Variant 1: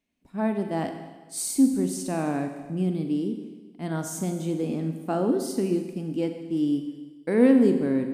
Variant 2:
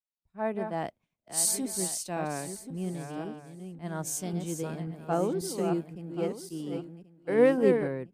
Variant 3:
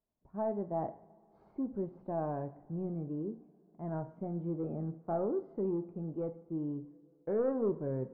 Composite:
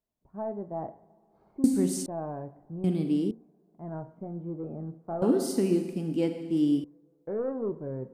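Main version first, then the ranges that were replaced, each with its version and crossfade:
3
0:01.64–0:02.06: punch in from 1
0:02.84–0:03.31: punch in from 1
0:05.22–0:06.84: punch in from 1
not used: 2

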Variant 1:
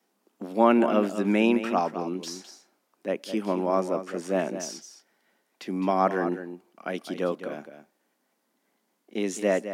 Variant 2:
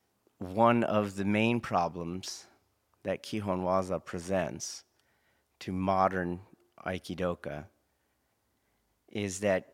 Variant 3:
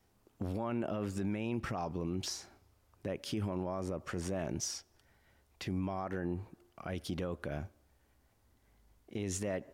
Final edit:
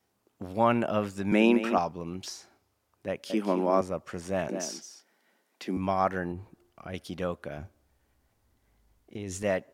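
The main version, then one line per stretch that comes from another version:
2
0:01.32–0:01.78: punch in from 1
0:03.30–0:03.81: punch in from 1
0:04.49–0:05.77: punch in from 1
0:06.32–0:06.94: punch in from 3
0:07.58–0:09.43: punch in from 3

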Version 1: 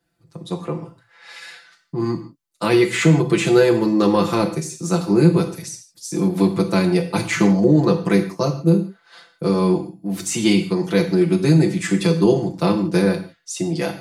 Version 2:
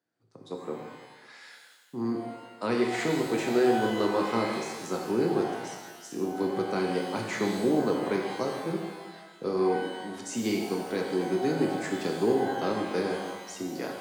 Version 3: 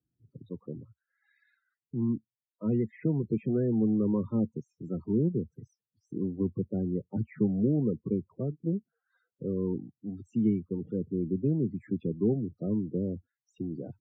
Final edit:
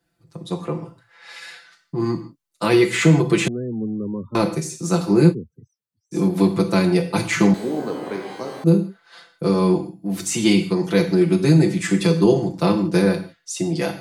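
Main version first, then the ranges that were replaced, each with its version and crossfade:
1
0:03.48–0:04.35: punch in from 3
0:05.32–0:06.14: punch in from 3, crossfade 0.06 s
0:07.54–0:08.64: punch in from 2

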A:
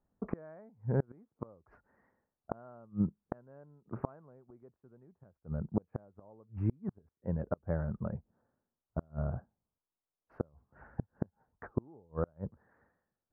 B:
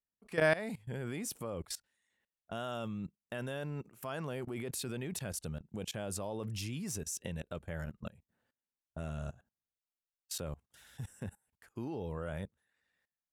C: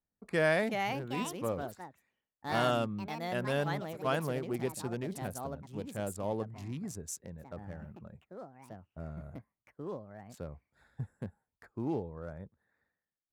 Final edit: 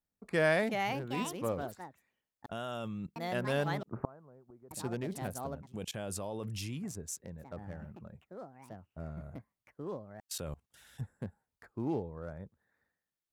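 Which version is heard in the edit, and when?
C
0:02.46–0:03.16: punch in from B
0:03.83–0:04.71: punch in from A
0:05.68–0:06.77: punch in from B, crossfade 0.24 s
0:10.20–0:11.01: punch in from B

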